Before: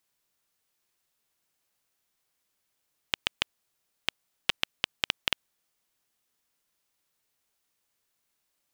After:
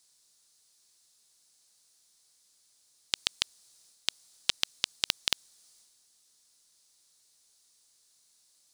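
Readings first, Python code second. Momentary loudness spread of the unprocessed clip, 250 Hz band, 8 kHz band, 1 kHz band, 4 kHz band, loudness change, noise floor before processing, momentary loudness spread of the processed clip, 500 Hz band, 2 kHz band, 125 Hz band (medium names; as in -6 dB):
5 LU, -4.5 dB, +8.5 dB, -5.0 dB, +1.0 dB, +0.5 dB, -79 dBFS, 5 LU, -4.5 dB, -5.0 dB, -4.5 dB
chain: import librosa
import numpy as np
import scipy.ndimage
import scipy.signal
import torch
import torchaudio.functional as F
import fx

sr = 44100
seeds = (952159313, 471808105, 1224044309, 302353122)

y = fx.band_shelf(x, sr, hz=6200.0, db=14.5, octaves=1.7)
y = fx.transient(y, sr, attack_db=-8, sustain_db=5)
y = F.gain(torch.from_numpy(y), 2.0).numpy()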